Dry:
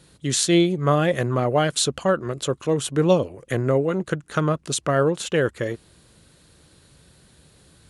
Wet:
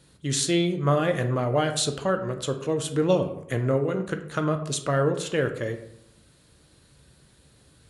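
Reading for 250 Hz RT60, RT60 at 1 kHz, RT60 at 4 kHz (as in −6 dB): 0.90 s, 0.75 s, 0.45 s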